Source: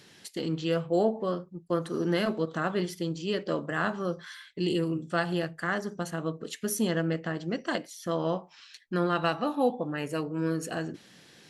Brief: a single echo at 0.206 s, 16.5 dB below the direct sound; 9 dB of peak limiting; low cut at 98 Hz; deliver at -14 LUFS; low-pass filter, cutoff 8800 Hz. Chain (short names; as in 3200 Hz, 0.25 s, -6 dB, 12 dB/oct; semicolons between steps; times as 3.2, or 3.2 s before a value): HPF 98 Hz; LPF 8800 Hz; limiter -21.5 dBFS; echo 0.206 s -16.5 dB; gain +19.5 dB